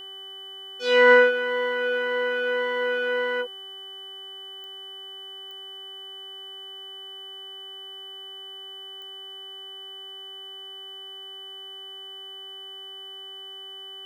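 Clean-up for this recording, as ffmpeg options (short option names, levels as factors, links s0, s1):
-af "adeclick=t=4,bandreject=f=387.4:t=h:w=4,bandreject=f=774.8:t=h:w=4,bandreject=f=1162.2:t=h:w=4,bandreject=f=1549.6:t=h:w=4,bandreject=f=1937:t=h:w=4,bandreject=f=3000:w=30,agate=range=0.0891:threshold=0.0224"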